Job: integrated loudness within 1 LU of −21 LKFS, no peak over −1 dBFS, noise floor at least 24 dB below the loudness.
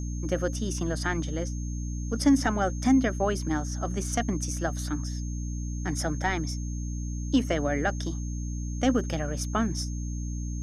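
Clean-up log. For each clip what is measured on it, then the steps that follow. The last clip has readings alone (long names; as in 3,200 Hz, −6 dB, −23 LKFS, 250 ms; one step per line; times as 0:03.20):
mains hum 60 Hz; hum harmonics up to 300 Hz; level of the hum −30 dBFS; interfering tone 6,400 Hz; level of the tone −45 dBFS; integrated loudness −29.0 LKFS; sample peak −11.0 dBFS; target loudness −21.0 LKFS
→ hum removal 60 Hz, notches 5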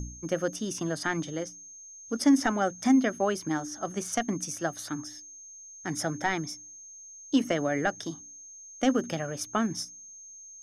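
mains hum none found; interfering tone 6,400 Hz; level of the tone −45 dBFS
→ notch filter 6,400 Hz, Q 30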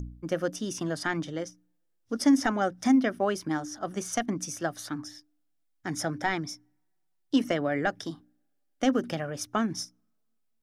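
interfering tone none found; integrated loudness −29.5 LKFS; sample peak −11.5 dBFS; target loudness −21.0 LKFS
→ level +8.5 dB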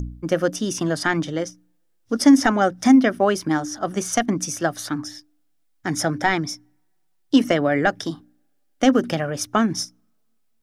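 integrated loudness −21.0 LKFS; sample peak −3.0 dBFS; background noise floor −65 dBFS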